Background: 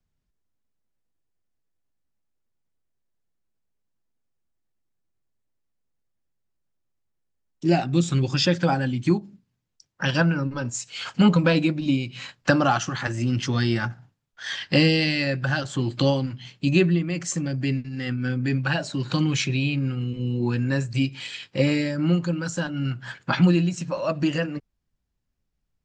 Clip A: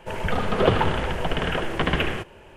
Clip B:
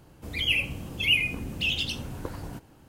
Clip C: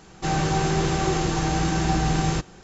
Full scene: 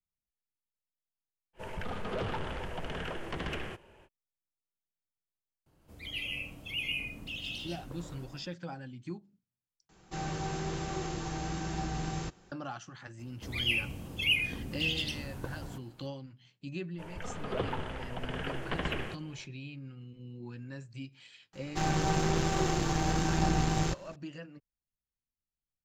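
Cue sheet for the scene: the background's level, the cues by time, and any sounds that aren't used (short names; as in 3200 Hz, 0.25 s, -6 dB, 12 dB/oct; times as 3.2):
background -20 dB
1.53 add A -11 dB, fades 0.05 s + soft clip -18.5 dBFS
5.66 add B -14 dB + digital reverb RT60 0.49 s, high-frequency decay 0.5×, pre-delay 0.105 s, DRR -1 dB
9.89 replace with C -13 dB
13.19 add B -5 dB
16.92 add A -17 dB, fades 0.05 s + AGC
21.53 add C -4 dB + half-wave gain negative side -7 dB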